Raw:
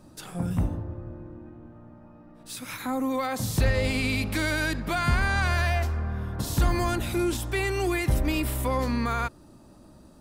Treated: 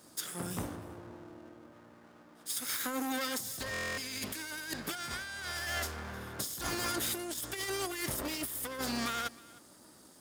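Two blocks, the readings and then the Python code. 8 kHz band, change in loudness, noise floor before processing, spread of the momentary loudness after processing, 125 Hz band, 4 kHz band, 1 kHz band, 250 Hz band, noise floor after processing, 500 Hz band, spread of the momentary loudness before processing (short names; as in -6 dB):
+1.0 dB, -9.0 dB, -52 dBFS, 15 LU, -19.5 dB, -2.5 dB, -9.5 dB, -11.5 dB, -58 dBFS, -11.5 dB, 14 LU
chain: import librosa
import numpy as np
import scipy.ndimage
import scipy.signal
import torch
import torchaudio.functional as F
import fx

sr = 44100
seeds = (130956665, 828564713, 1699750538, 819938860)

y = fx.lower_of_two(x, sr, delay_ms=0.58)
y = scipy.signal.sosfilt(scipy.signal.butter(2, 84.0, 'highpass', fs=sr, output='sos'), y)
y = fx.bass_treble(y, sr, bass_db=-13, treble_db=10)
y = fx.over_compress(y, sr, threshold_db=-32.0, ratio=-0.5)
y = y + 10.0 ** (-22.0 / 20.0) * np.pad(y, (int(310 * sr / 1000.0), 0))[:len(y)]
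y = fx.buffer_glitch(y, sr, at_s=(3.72,), block=1024, repeats=10)
y = F.gain(torch.from_numpy(y), -4.0).numpy()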